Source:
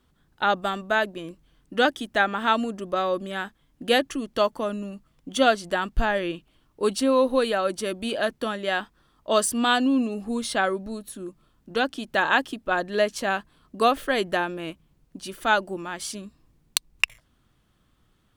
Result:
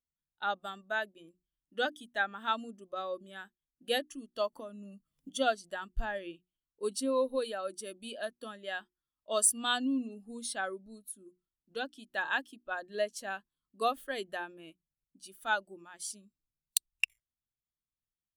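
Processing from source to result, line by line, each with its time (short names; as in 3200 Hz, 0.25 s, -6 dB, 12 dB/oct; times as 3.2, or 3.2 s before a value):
4.52–5.3 three-band squash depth 100%
whole clip: pre-emphasis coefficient 0.8; notches 60/120/180/240/300/360 Hz; spectral expander 1.5:1; gain -4 dB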